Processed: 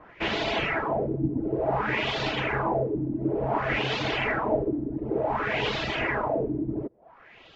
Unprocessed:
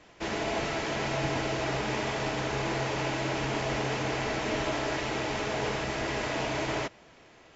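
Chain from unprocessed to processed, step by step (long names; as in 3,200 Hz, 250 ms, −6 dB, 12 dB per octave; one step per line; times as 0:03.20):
auto-filter low-pass sine 0.56 Hz 280–3,800 Hz
reverb reduction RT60 0.88 s
level +4 dB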